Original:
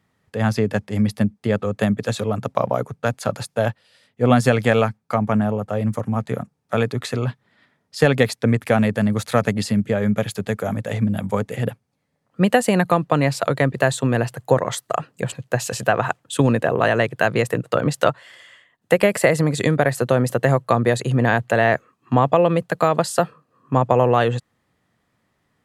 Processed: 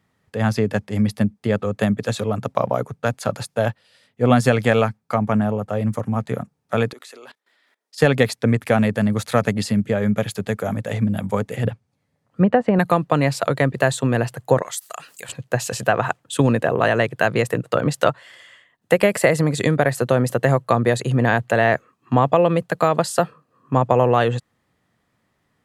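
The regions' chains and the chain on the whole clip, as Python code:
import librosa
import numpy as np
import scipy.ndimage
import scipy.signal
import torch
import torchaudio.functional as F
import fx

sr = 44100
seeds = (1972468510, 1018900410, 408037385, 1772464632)

y = fx.chain(x, sr, fx.highpass(hz=330.0, slope=24),
    fx.high_shelf(hz=3000.0, db=10.0),
    fx.level_steps(step_db=21), at=(6.93, 7.98))
y = fx.chain(y, sr, fx.env_lowpass_down(base_hz=1200.0, full_db=-12.5),
    fx.peak_eq(hz=97.0, db=7.0, octaves=0.96), at=(11.64, 12.79))
y = fx.chain(y, sr, fx.differentiator(),
    fx.env_flatten(amount_pct=50), at=(14.62, 15.29))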